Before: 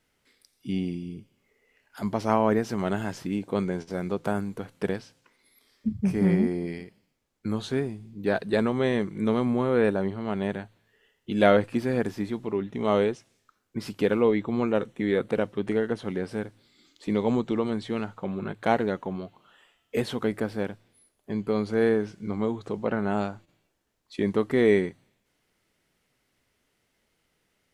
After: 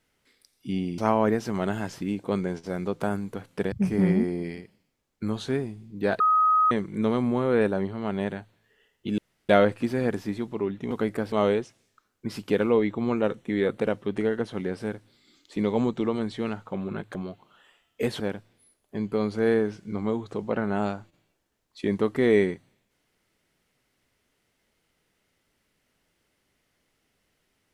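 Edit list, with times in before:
0.98–2.22 s: delete
4.96–5.95 s: delete
8.43–8.94 s: bleep 1.26 kHz -17 dBFS
11.41 s: insert room tone 0.31 s
18.66–19.09 s: delete
20.14–20.55 s: move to 12.83 s

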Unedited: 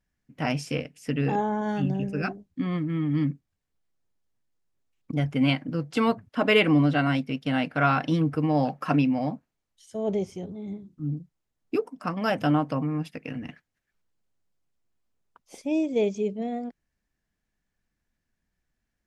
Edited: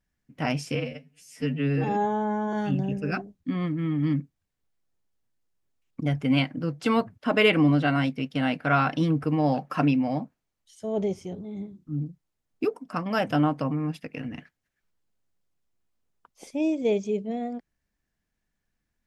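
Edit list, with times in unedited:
0.75–1.64 s: stretch 2×

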